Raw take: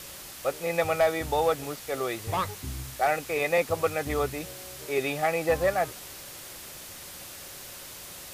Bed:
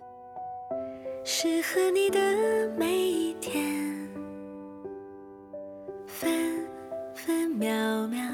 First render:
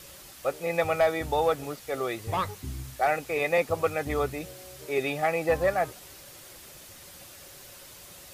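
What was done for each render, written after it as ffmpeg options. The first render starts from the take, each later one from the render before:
-af "afftdn=nr=6:nf=-43"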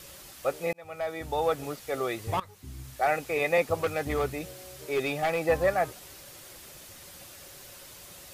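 -filter_complex "[0:a]asettb=1/sr,asplit=3[a][b][c];[a]atrim=end=3.834[d];[b]atrim=start=3.83:end=5.41,asetpts=PTS-STARTPTS,afade=t=in:d=0.004:c=qsin,afade=t=out:st=1.576:d=0.004:c=qsin,asoftclip=type=hard:threshold=-22dB[e];[c]atrim=start=5.406[f];[d][e]acrossfade=d=0.004:c1=hsin:c2=qsin[g];[g][f]acrossfade=d=0.004:c1=qsin:c2=hsin,asplit=3[h][i][j];[h]atrim=end=0.73,asetpts=PTS-STARTPTS,afade=t=out:st=0.726:d=0.004:c=hsin[k];[i]atrim=start=0.73:end=2.4,asetpts=PTS-STARTPTS,afade=t=in:d=0.93,afade=t=out:st=1.666:d=0.004:c=hsin:silence=0.105925[l];[j]atrim=start=2.4,asetpts=PTS-STARTPTS,afade=t=in:d=0.74:silence=0.105925[m];[k][l][m]concat=n=3:v=0:a=1"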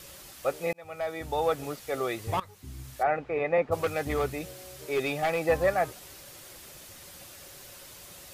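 -filter_complex "[0:a]asplit=3[a][b][c];[a]afade=t=out:st=3.02:d=0.02[d];[b]lowpass=1.7k,afade=t=in:st=3.02:d=0.02,afade=t=out:st=3.71:d=0.02[e];[c]afade=t=in:st=3.71:d=0.02[f];[d][e][f]amix=inputs=3:normalize=0"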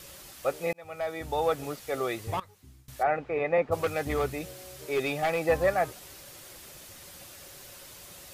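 -filter_complex "[0:a]asplit=2[a][b];[a]atrim=end=2.88,asetpts=PTS-STARTPTS,afade=t=out:st=2.17:d=0.71:silence=0.0749894[c];[b]atrim=start=2.88,asetpts=PTS-STARTPTS,afade=t=in:d=0.004:c=hsin:silence=0.0749894[d];[c][d]concat=n=2:v=0:a=1"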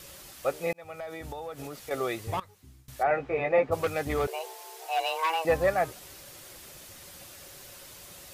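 -filter_complex "[0:a]asettb=1/sr,asplit=3[a][b][c];[a]atrim=end=0.794[d];[b]atrim=start=0.79:end=1.91,asetpts=PTS-STARTPTS,afade=t=in:d=0.004:c=qsin,afade=t=out:st=1.116:d=0.004:c=qsin,acompressor=threshold=-34dB:ratio=12:attack=3.2:release=140:knee=1:detection=peak[e];[c]atrim=start=1.906[f];[d][e]acrossfade=d=0.004:c1=hsin:c2=qsin[g];[g][f]acrossfade=d=0.004:c1=qsin:c2=hsin,asettb=1/sr,asplit=3[h][i][j];[h]atrim=end=3.094[k];[i]atrim=start=3.09:end=3.72,asetpts=PTS-STARTPTS,afade=t=in:d=0.004:c=qsin,afade=t=out:st=0.626:d=0.004:c=qsin,asplit=2[l][m];[m]adelay=15,volume=-3dB[n];[l][n]amix=inputs=2:normalize=0,atrim=end_sample=27783[o];[j]atrim=start=3.716[p];[k][o]acrossfade=d=0.004:c1=hsin:c2=qsin[q];[q][p]acrossfade=d=0.004:c1=qsin:c2=hsin,asettb=1/sr,asplit=3[r][s][t];[r]atrim=end=4.274[u];[s]atrim=start=4.27:end=5.45,asetpts=PTS-STARTPTS,afade=t=in:d=0.004:c=qsin,afade=t=out:st=1.176:d=0.004:c=qsin,afreqshift=320[v];[t]atrim=start=5.446[w];[u][v]acrossfade=d=0.004:c1=hsin:c2=qsin[x];[x][w]acrossfade=d=0.004:c1=qsin:c2=hsin"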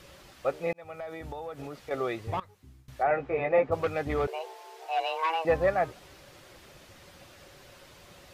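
-filter_complex "[0:a]acrossover=split=6300[a][b];[b]acompressor=threshold=-55dB:ratio=4:attack=1:release=60[c];[a][c]amix=inputs=2:normalize=0,highshelf=f=4.2k:g=-9.5"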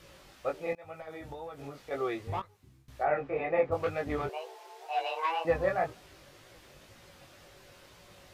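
-af "flanger=delay=17.5:depth=4.4:speed=2"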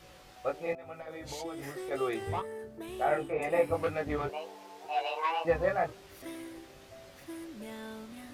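-filter_complex "[1:a]volume=-16dB[a];[0:a][a]amix=inputs=2:normalize=0"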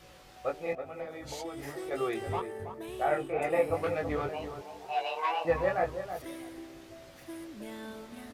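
-filter_complex "[0:a]asplit=2[a][b];[b]adelay=325,lowpass=f=1.2k:p=1,volume=-7.5dB,asplit=2[c][d];[d]adelay=325,lowpass=f=1.2k:p=1,volume=0.18,asplit=2[e][f];[f]adelay=325,lowpass=f=1.2k:p=1,volume=0.18[g];[a][c][e][g]amix=inputs=4:normalize=0"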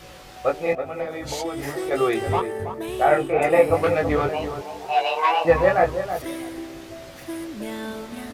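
-af "volume=11dB"

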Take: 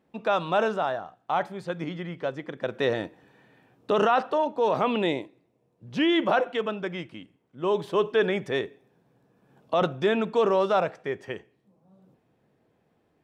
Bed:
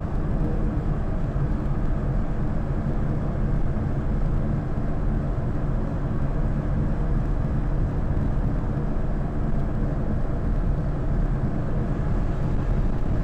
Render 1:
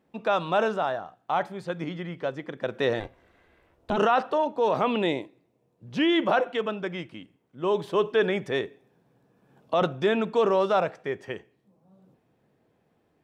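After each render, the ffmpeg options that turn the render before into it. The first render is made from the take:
-filter_complex "[0:a]asplit=3[a][b][c];[a]afade=t=out:st=2.99:d=0.02[d];[b]aeval=exprs='val(0)*sin(2*PI*210*n/s)':c=same,afade=t=in:st=2.99:d=0.02,afade=t=out:st=3.96:d=0.02[e];[c]afade=t=in:st=3.96:d=0.02[f];[d][e][f]amix=inputs=3:normalize=0"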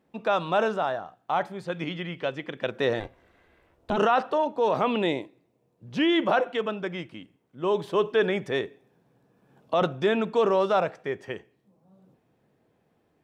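-filter_complex "[0:a]asettb=1/sr,asplit=3[a][b][c];[a]atrim=end=1.724[d];[b]atrim=start=1.72:end=2.7,asetpts=PTS-STARTPTS,afade=t=in:d=0.004:c=qsin,afade=t=out:st=0.976:d=0.004:c=qsin,equalizer=f=2.8k:t=o:w=0.83:g=9.5[e];[c]atrim=start=2.696[f];[d][e]acrossfade=d=0.004:c1=hsin:c2=qsin[g];[g][f]acrossfade=d=0.004:c1=qsin:c2=hsin"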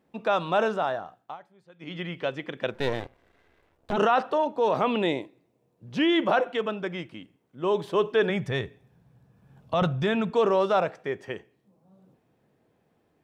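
-filter_complex "[0:a]asettb=1/sr,asplit=3[a][b][c];[a]atrim=end=2.744[d];[b]atrim=start=2.74:end=3.93,asetpts=PTS-STARTPTS,afade=t=in:d=0.004:c=qsin,afade=t=out:st=1.186:d=0.004:c=qsin,aeval=exprs='if(lt(val(0),0),0.251*val(0),val(0))':c=same[e];[c]atrim=start=3.926[f];[d][e]acrossfade=d=0.004:c1=hsin:c2=qsin[g];[g][f]acrossfade=d=0.004:c1=qsin:c2=hsin,asplit=3[h][i][j];[h]afade=t=out:st=8.29:d=0.02[k];[i]asubboost=boost=8.5:cutoff=110,afade=t=in:st=8.29:d=0.02,afade=t=out:st=10.3:d=0.02[l];[j]afade=t=in:st=10.3:d=0.02[m];[k][l][m]amix=inputs=3:normalize=0,asplit=3[n][o][p];[n]atrim=end=1.37,asetpts=PTS-STARTPTS,afade=t=out:st=1.16:d=0.21:silence=0.0794328[q];[o]atrim=start=1.37:end=1.79,asetpts=PTS-STARTPTS,volume=-22dB[r];[p]atrim=start=1.79,asetpts=PTS-STARTPTS,afade=t=in:d=0.21:silence=0.0794328[s];[q][r][s]concat=n=3:v=0:a=1"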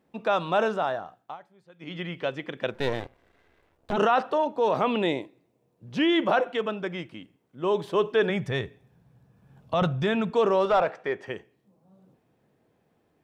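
-filter_complex "[0:a]asettb=1/sr,asplit=3[a][b][c];[a]atrim=end=10.654[d];[b]atrim=start=10.65:end=11.27,asetpts=PTS-STARTPTS,afade=t=in:d=0.004:c=qsin,afade=t=out:st=0.616:d=0.004:c=qsin,asplit=2[e][f];[f]highpass=f=720:p=1,volume=12dB,asoftclip=type=tanh:threshold=-12.5dB[g];[e][g]amix=inputs=2:normalize=0,lowpass=f=1.9k:p=1,volume=-6dB[h];[c]atrim=start=11.266[i];[d][h]acrossfade=d=0.004:c1=hsin:c2=qsin[j];[j][i]acrossfade=d=0.004:c1=qsin:c2=hsin"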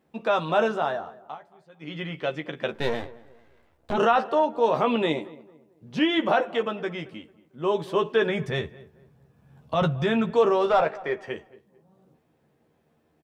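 -filter_complex "[0:a]asplit=2[a][b];[b]adelay=13,volume=-5.5dB[c];[a][c]amix=inputs=2:normalize=0,asplit=2[d][e];[e]adelay=223,lowpass=f=1.4k:p=1,volume=-19dB,asplit=2[f][g];[g]adelay=223,lowpass=f=1.4k:p=1,volume=0.36,asplit=2[h][i];[i]adelay=223,lowpass=f=1.4k:p=1,volume=0.36[j];[d][f][h][j]amix=inputs=4:normalize=0"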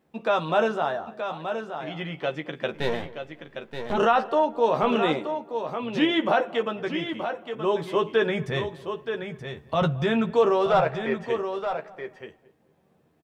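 -af "aecho=1:1:926:0.398"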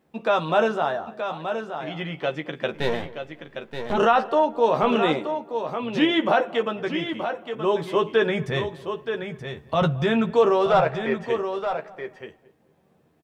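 -af "volume=2dB"

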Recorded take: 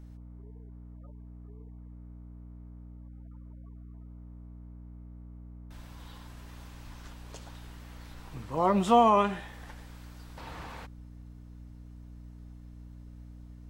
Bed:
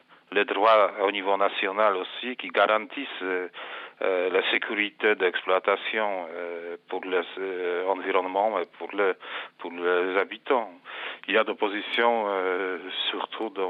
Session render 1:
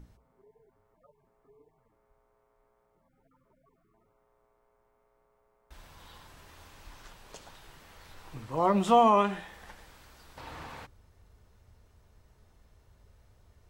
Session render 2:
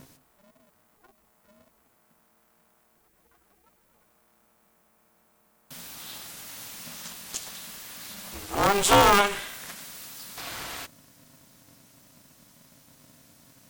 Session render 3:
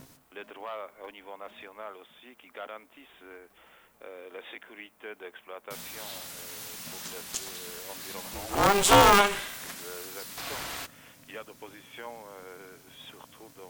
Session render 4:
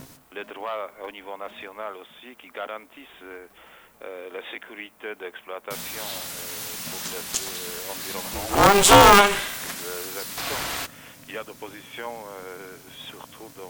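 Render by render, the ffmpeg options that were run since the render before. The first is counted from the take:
-af "bandreject=f=60:t=h:w=6,bandreject=f=120:t=h:w=6,bandreject=f=180:t=h:w=6,bandreject=f=240:t=h:w=6,bandreject=f=300:t=h:w=6"
-af "crystalizer=i=9:c=0,aeval=exprs='val(0)*sgn(sin(2*PI*200*n/s))':c=same"
-filter_complex "[1:a]volume=-20dB[a];[0:a][a]amix=inputs=2:normalize=0"
-af "volume=7.5dB,alimiter=limit=-3dB:level=0:latency=1"

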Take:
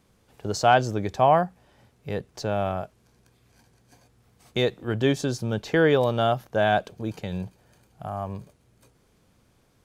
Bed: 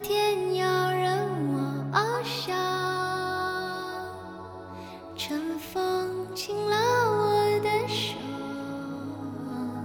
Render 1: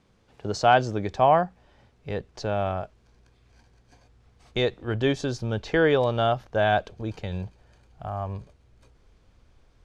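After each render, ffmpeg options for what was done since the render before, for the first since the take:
-af "lowpass=5.6k,asubboost=boost=6.5:cutoff=60"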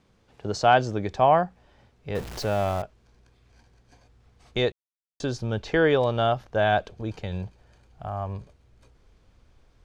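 -filter_complex "[0:a]asettb=1/sr,asplit=3[a][b][c];[a]atrim=end=2.154[d];[b]atrim=start=2.15:end=2.82,asetpts=PTS-STARTPTS,afade=t=in:d=0.004:c=qsin,afade=t=out:st=0.666:d=0.004:c=qsin,aeval=exprs='val(0)+0.5*0.0237*sgn(val(0))':c=same[e];[c]atrim=start=2.816[f];[d][e]acrossfade=d=0.004:c1=hsin:c2=qsin[g];[g][f]acrossfade=d=0.004:c1=qsin:c2=hsin,asplit=3[h][i][j];[h]atrim=end=4.72,asetpts=PTS-STARTPTS,afade=t=out:st=4.716:d=0.004:c=hsin[k];[i]atrim=start=4.72:end=5.2,asetpts=PTS-STARTPTS,volume=0[l];[j]atrim=start=5.2,asetpts=PTS-STARTPTS,afade=t=in:d=0.004:c=hsin[m];[k][l][m]concat=n=3:v=0:a=1"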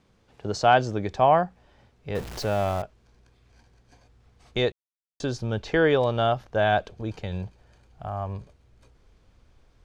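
-af anull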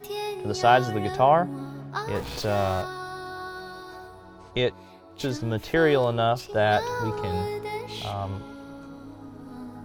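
-filter_complex "[1:a]volume=-7dB[a];[0:a][a]amix=inputs=2:normalize=0"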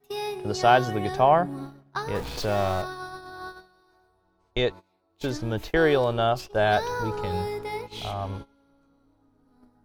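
-af "agate=range=-21dB:threshold=-35dB:ratio=16:detection=peak,asubboost=boost=2.5:cutoff=58"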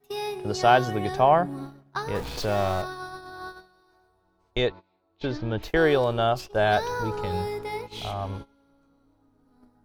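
-filter_complex "[0:a]asettb=1/sr,asplit=3[a][b][c];[a]atrim=end=4.674[d];[b]atrim=start=4.67:end=5.63,asetpts=PTS-STARTPTS,afade=t=in:d=0.004:c=qsin,afade=t=out:st=0.956:d=0.004:c=qsin,lowpass=f=4.4k:w=0.5412,lowpass=f=4.4k:w=1.3066[e];[c]atrim=start=5.626[f];[d][e]acrossfade=d=0.004:c1=hsin:c2=qsin[g];[g][f]acrossfade=d=0.004:c1=qsin:c2=hsin"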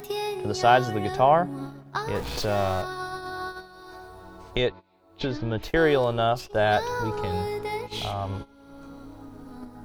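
-af "acompressor=mode=upward:threshold=-25dB:ratio=2.5"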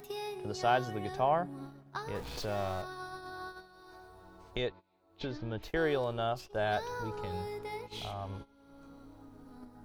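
-af "volume=-10dB"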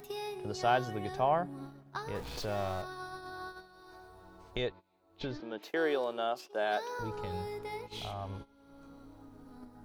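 -filter_complex "[0:a]asettb=1/sr,asplit=3[a][b][c];[a]atrim=end=5.404[d];[b]atrim=start=5.4:end=6.99,asetpts=PTS-STARTPTS,afade=t=in:d=0.004:c=qsin,afade=t=out:st=1.586:d=0.004:c=qsin,highpass=f=240:w=0.5412,highpass=f=240:w=1.3066[e];[c]atrim=start=6.986[f];[d][e]acrossfade=d=0.004:c1=hsin:c2=qsin[g];[g][f]acrossfade=d=0.004:c1=qsin:c2=hsin"

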